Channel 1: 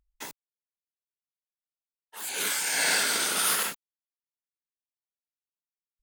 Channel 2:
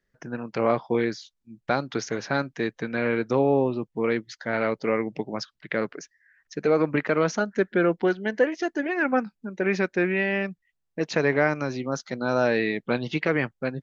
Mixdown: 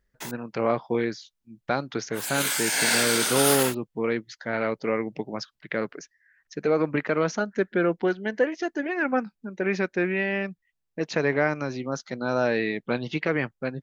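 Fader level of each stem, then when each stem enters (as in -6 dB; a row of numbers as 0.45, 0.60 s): +2.0, -1.5 dB; 0.00, 0.00 s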